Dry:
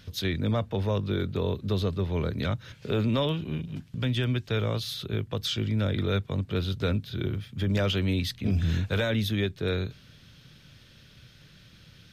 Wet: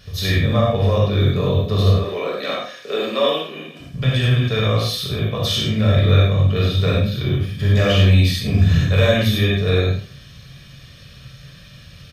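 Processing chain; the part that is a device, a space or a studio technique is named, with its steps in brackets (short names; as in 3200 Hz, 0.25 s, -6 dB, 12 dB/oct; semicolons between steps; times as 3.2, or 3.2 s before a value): 1.95–3.8 HPF 300 Hz 24 dB/oct; microphone above a desk (comb 1.7 ms, depth 52%; reverb RT60 0.35 s, pre-delay 42 ms, DRR 6 dB); non-linear reverb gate 0.13 s flat, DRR -5 dB; gain +2.5 dB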